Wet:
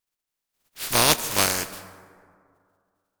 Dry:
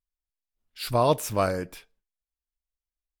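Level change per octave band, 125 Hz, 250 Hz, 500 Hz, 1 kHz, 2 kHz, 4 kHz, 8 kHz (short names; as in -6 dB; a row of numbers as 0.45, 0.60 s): -3.5, -0.5, -4.5, +0.5, +11.5, +13.0, +15.5 dB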